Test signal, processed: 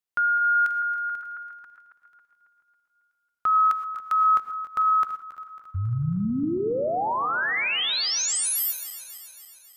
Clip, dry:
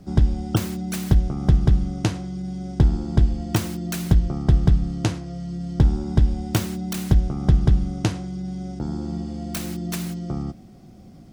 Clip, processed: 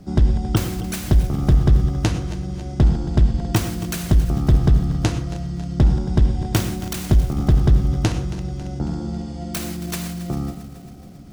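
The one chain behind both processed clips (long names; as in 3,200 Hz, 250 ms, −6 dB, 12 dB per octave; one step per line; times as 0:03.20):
feedback delay that plays each chunk backwards 137 ms, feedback 75%, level −13.5 dB
reverb whose tail is shaped and stops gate 140 ms rising, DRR 11.5 dB
gain into a clipping stage and back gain 10.5 dB
level +2.5 dB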